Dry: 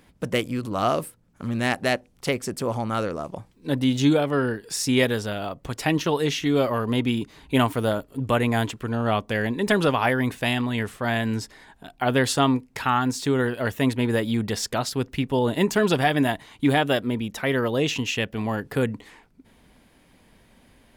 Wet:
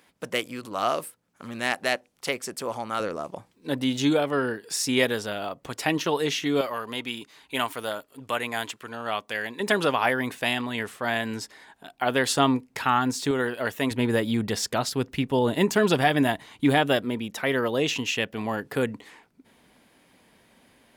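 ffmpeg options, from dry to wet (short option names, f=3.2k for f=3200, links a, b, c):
-af "asetnsamples=n=441:p=0,asendcmd='3 highpass f 320;6.61 highpass f 1200;9.6 highpass f 400;12.31 highpass f 170;13.31 highpass f 390;13.91 highpass f 110;17.05 highpass f 250',highpass=f=660:p=1"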